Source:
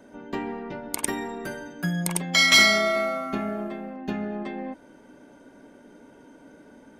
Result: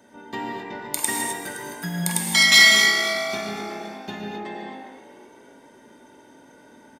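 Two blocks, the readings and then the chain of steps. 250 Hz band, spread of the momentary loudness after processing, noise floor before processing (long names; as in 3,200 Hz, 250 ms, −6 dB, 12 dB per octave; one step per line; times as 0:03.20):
−2.5 dB, 23 LU, −52 dBFS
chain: high-pass filter 46 Hz
high-shelf EQ 2,200 Hz +9 dB
hollow resonant body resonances 890/1,900/3,600 Hz, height 10 dB, ringing for 45 ms
on a send: echo with shifted repeats 259 ms, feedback 46%, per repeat +52 Hz, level −12.5 dB
on the sum: reverb whose tail is shaped and stops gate 290 ms flat, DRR −1 dB
level −5.5 dB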